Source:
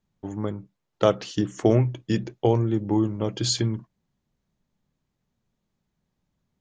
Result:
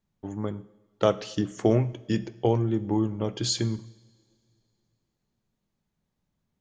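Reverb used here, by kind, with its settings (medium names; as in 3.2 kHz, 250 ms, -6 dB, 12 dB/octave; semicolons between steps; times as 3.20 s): two-slope reverb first 0.78 s, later 2.9 s, from -19 dB, DRR 14.5 dB; trim -2.5 dB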